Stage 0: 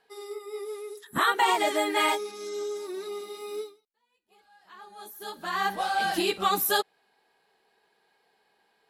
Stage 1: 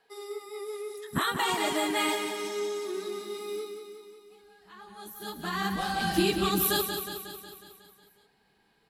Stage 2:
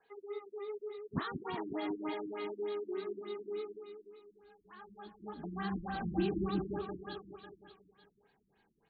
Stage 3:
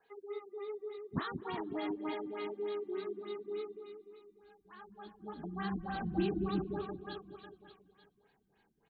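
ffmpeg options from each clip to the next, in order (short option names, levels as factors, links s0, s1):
-filter_complex "[0:a]asubboost=boost=7:cutoff=210,acrossover=split=420|3000[s0][s1][s2];[s1]acompressor=threshold=0.0224:ratio=2[s3];[s0][s3][s2]amix=inputs=3:normalize=0,aecho=1:1:182|364|546|728|910|1092|1274|1456:0.447|0.268|0.161|0.0965|0.0579|0.0347|0.0208|0.0125"
-filter_complex "[0:a]acrossover=split=330|1500[s0][s1][s2];[s1]alimiter=level_in=2.24:limit=0.0631:level=0:latency=1:release=30,volume=0.447[s3];[s2]acompressor=threshold=0.00891:ratio=6[s4];[s0][s3][s4]amix=inputs=3:normalize=0,afftfilt=real='re*lt(b*sr/1024,340*pow(4700/340,0.5+0.5*sin(2*PI*3.4*pts/sr)))':imag='im*lt(b*sr/1024,340*pow(4700/340,0.5+0.5*sin(2*PI*3.4*pts/sr)))':win_size=1024:overlap=0.75,volume=0.631"
-filter_complex "[0:a]asplit=3[s0][s1][s2];[s1]adelay=211,afreqshift=-41,volume=0.0668[s3];[s2]adelay=422,afreqshift=-82,volume=0.0248[s4];[s0][s3][s4]amix=inputs=3:normalize=0"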